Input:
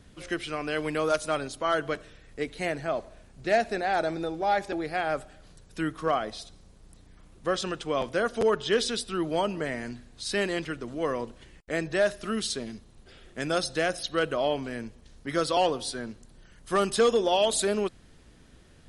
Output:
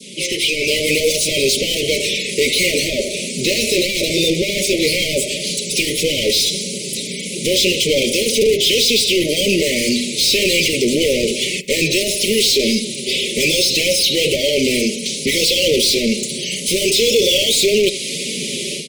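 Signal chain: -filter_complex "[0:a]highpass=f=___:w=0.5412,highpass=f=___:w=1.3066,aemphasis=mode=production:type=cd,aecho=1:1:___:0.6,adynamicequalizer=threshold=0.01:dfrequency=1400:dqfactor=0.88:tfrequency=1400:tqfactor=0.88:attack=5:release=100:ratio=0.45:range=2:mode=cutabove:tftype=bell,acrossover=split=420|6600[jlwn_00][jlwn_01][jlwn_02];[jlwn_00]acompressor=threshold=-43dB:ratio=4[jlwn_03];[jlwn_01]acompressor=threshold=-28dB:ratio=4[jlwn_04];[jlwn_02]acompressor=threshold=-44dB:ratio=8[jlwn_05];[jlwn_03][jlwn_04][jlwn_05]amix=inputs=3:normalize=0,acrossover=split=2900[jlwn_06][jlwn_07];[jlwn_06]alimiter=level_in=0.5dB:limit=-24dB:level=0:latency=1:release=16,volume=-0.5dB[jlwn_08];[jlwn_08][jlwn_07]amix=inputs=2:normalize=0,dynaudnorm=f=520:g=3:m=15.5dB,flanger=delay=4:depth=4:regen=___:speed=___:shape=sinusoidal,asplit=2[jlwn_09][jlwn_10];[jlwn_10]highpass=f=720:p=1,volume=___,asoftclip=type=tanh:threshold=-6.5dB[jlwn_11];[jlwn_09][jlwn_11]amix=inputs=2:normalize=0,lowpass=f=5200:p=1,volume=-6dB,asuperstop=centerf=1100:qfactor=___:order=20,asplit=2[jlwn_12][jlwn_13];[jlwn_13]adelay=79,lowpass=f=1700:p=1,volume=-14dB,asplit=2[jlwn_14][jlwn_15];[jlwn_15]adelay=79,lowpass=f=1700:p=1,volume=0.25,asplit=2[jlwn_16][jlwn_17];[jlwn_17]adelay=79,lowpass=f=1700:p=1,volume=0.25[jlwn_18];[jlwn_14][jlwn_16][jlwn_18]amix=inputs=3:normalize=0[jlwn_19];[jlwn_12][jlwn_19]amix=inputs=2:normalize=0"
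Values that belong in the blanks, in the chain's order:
130, 130, 5, -33, 1.8, 35dB, 0.71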